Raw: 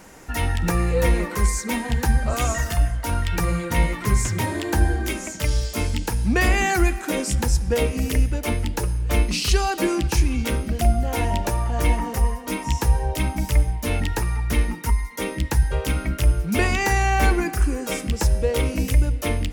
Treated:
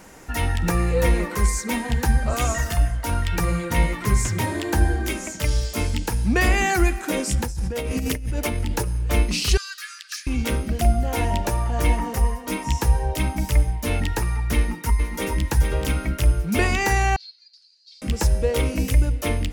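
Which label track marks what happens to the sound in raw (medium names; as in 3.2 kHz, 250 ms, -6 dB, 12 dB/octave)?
7.420000	8.960000	compressor with a negative ratio -25 dBFS
9.570000	10.270000	rippled Chebyshev high-pass 1.2 kHz, ripple 9 dB
14.560000	15.420000	echo throw 430 ms, feedback 15%, level -5.5 dB
17.160000	18.020000	Butterworth band-pass 4.4 kHz, Q 6.2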